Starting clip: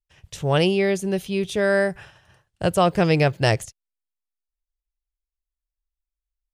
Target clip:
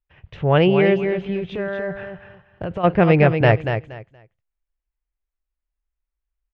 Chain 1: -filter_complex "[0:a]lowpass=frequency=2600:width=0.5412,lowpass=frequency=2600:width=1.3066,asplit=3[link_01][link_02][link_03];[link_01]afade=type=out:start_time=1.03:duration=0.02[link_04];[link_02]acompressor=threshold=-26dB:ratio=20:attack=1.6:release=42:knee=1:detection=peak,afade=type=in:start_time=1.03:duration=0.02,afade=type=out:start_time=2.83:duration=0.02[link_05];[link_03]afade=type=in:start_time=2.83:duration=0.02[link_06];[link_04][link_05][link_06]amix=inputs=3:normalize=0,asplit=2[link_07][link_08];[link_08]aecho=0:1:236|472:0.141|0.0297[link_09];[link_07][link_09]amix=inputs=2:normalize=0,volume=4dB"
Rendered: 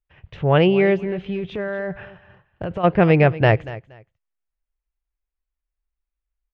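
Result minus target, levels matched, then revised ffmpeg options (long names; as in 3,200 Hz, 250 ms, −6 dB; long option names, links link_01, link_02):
echo-to-direct −9.5 dB
-filter_complex "[0:a]lowpass=frequency=2600:width=0.5412,lowpass=frequency=2600:width=1.3066,asplit=3[link_01][link_02][link_03];[link_01]afade=type=out:start_time=1.03:duration=0.02[link_04];[link_02]acompressor=threshold=-26dB:ratio=20:attack=1.6:release=42:knee=1:detection=peak,afade=type=in:start_time=1.03:duration=0.02,afade=type=out:start_time=2.83:duration=0.02[link_05];[link_03]afade=type=in:start_time=2.83:duration=0.02[link_06];[link_04][link_05][link_06]amix=inputs=3:normalize=0,asplit=2[link_07][link_08];[link_08]aecho=0:1:236|472|708:0.422|0.0886|0.0186[link_09];[link_07][link_09]amix=inputs=2:normalize=0,volume=4dB"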